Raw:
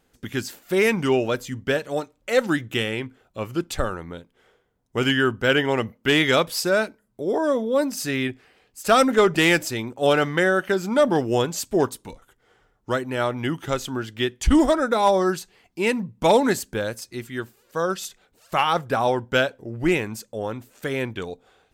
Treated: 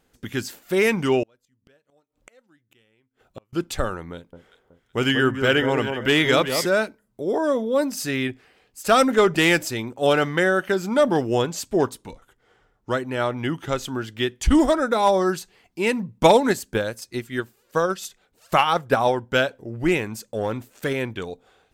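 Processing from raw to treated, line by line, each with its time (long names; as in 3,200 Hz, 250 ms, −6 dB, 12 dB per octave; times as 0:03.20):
0:01.23–0:03.53: gate with flip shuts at −27 dBFS, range −37 dB
0:04.14–0:06.66: delay that swaps between a low-pass and a high-pass 187 ms, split 1,200 Hz, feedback 54%, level −6 dB
0:11.27–0:13.83: high-shelf EQ 8,600 Hz −6 dB
0:16.18–0:19.31: transient designer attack +6 dB, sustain −3 dB
0:20.31–0:20.93: leveller curve on the samples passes 1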